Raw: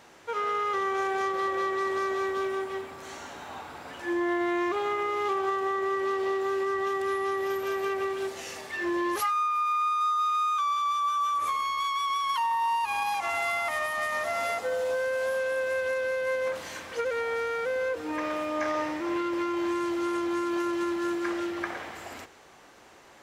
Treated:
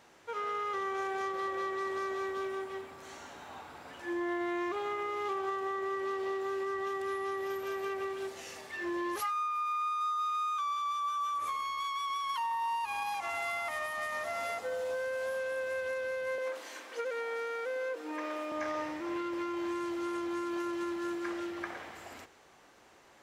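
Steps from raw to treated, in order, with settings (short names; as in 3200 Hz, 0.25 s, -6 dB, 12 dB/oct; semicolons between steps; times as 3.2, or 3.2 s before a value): 16.38–18.52 steep high-pass 250 Hz 36 dB/oct; gain -6.5 dB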